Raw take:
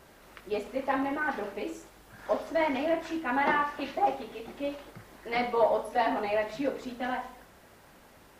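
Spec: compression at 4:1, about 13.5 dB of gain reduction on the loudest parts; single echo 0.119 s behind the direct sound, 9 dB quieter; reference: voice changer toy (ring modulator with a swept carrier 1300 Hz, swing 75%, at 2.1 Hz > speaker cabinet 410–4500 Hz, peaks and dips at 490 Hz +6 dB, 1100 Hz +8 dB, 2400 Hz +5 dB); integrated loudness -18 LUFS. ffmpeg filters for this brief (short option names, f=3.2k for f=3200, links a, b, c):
-af "acompressor=threshold=-37dB:ratio=4,aecho=1:1:119:0.355,aeval=exprs='val(0)*sin(2*PI*1300*n/s+1300*0.75/2.1*sin(2*PI*2.1*n/s))':c=same,highpass=410,equalizer=f=490:t=q:w=4:g=6,equalizer=f=1.1k:t=q:w=4:g=8,equalizer=f=2.4k:t=q:w=4:g=5,lowpass=f=4.5k:w=0.5412,lowpass=f=4.5k:w=1.3066,volume=20.5dB"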